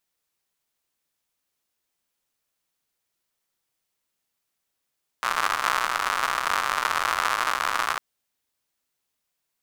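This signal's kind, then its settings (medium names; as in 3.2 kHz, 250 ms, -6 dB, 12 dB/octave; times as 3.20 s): rain from filtered ticks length 2.75 s, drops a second 140, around 1.2 kHz, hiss -24.5 dB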